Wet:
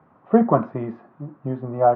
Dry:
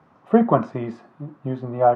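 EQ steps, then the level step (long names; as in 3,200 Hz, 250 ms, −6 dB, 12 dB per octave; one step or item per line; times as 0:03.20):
low-pass filter 1,800 Hz 12 dB per octave
0.0 dB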